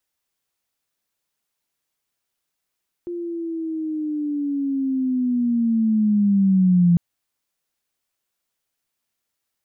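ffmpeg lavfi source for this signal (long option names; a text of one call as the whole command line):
ffmpeg -f lavfi -i "aevalsrc='pow(10,(-26+14.5*t/3.9)/20)*sin(2*PI*(350*t-180*t*t/(2*3.9)))':duration=3.9:sample_rate=44100" out.wav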